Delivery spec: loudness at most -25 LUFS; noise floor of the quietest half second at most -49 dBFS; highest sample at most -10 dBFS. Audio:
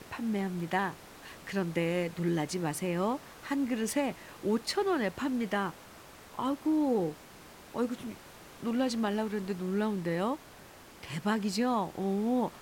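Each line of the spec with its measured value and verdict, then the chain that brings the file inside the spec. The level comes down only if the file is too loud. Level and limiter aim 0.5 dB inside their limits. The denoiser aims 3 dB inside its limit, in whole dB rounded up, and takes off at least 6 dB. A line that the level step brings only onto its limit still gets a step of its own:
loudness -32.5 LUFS: pass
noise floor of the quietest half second -52 dBFS: pass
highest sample -16.5 dBFS: pass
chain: none needed

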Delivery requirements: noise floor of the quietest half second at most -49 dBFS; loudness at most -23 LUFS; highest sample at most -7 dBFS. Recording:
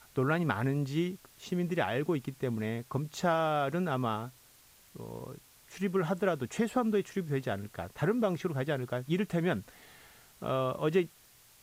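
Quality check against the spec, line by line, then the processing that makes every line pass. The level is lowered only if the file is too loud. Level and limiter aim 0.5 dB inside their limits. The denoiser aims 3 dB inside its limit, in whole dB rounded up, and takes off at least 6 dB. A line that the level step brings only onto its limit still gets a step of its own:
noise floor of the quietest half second -60 dBFS: pass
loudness -32.5 LUFS: pass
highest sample -14.0 dBFS: pass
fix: none needed

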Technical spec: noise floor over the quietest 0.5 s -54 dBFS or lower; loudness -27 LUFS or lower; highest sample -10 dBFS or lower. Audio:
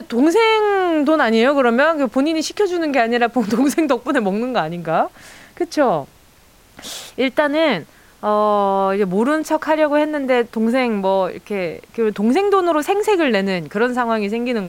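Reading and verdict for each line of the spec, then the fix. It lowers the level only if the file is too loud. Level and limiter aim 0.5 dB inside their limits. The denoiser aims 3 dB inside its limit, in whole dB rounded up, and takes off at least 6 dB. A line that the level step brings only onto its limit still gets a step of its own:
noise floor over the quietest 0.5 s -50 dBFS: fail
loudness -17.5 LUFS: fail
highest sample -3.0 dBFS: fail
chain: trim -10 dB

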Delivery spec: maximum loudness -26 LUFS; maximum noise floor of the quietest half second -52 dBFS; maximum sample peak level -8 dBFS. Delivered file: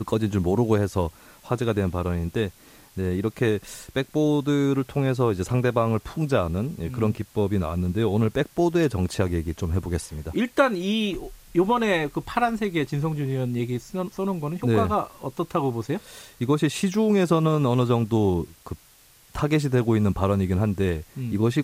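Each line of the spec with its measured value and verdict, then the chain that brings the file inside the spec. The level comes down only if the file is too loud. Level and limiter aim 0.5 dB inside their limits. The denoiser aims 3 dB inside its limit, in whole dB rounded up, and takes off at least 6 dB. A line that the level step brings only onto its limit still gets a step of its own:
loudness -24.5 LUFS: fail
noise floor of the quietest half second -54 dBFS: pass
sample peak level -5.5 dBFS: fail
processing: trim -2 dB; peak limiter -8.5 dBFS

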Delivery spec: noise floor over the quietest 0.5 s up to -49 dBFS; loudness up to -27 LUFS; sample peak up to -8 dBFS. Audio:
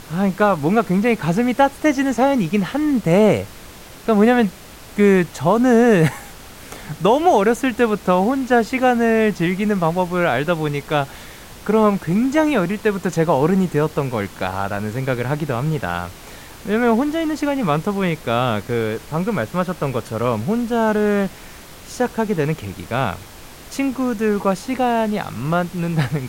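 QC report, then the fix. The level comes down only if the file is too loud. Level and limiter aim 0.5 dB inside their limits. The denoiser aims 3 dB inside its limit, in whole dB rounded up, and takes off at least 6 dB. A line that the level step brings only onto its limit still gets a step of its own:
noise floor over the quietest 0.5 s -39 dBFS: fail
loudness -19.0 LUFS: fail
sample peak -4.0 dBFS: fail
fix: noise reduction 6 dB, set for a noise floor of -39 dBFS; trim -8.5 dB

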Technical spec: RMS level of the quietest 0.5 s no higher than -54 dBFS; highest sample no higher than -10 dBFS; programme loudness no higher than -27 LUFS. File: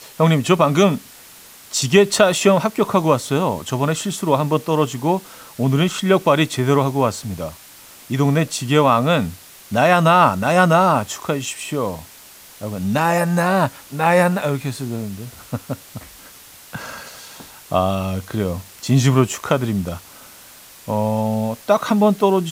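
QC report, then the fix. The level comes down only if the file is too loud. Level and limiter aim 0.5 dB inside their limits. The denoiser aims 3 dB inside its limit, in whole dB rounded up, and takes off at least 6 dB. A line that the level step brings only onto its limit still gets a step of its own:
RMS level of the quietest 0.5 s -43 dBFS: fail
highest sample -2.0 dBFS: fail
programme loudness -18.0 LUFS: fail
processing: noise reduction 6 dB, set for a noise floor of -43 dBFS; trim -9.5 dB

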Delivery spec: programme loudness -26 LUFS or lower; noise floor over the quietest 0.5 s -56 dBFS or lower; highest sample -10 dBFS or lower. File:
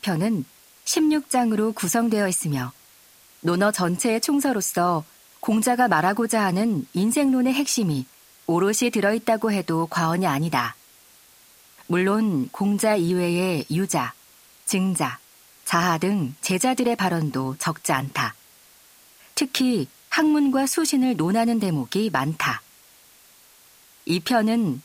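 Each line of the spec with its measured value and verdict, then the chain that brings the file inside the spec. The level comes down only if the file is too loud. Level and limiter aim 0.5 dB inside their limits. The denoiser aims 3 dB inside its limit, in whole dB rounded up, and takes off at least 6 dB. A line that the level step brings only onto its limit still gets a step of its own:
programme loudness -22.5 LUFS: fail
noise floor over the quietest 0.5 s -53 dBFS: fail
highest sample -6.0 dBFS: fail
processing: trim -4 dB; peak limiter -10.5 dBFS

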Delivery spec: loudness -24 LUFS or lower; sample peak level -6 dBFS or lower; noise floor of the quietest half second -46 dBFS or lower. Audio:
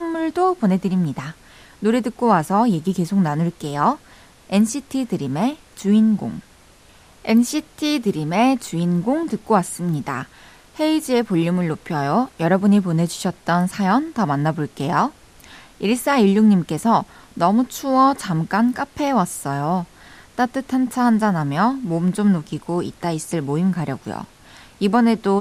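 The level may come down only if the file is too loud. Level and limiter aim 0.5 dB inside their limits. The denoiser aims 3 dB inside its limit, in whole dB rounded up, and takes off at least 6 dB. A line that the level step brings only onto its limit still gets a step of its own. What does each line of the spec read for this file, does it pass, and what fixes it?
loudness -20.0 LUFS: fail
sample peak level -4.5 dBFS: fail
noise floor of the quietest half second -49 dBFS: pass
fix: trim -4.5 dB

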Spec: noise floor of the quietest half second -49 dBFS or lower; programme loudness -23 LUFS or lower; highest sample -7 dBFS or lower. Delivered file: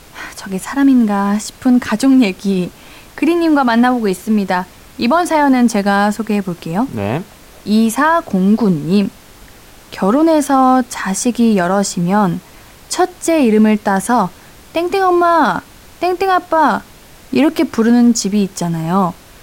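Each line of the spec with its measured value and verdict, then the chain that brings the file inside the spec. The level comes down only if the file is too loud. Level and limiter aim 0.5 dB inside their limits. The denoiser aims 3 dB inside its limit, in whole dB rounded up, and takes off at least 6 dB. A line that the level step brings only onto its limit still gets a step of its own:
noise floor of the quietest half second -40 dBFS: fail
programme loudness -14.5 LUFS: fail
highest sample -3.5 dBFS: fail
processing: noise reduction 6 dB, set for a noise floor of -40 dBFS; trim -9 dB

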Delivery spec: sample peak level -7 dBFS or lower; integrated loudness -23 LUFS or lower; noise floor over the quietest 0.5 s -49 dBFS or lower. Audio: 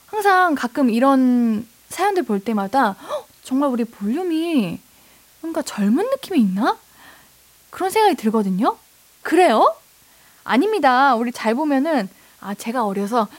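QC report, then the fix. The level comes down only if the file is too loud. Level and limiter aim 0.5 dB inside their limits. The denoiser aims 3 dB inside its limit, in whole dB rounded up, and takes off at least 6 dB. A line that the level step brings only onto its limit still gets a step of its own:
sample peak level -4.5 dBFS: fail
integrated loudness -19.0 LUFS: fail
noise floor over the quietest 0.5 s -52 dBFS: pass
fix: trim -4.5 dB

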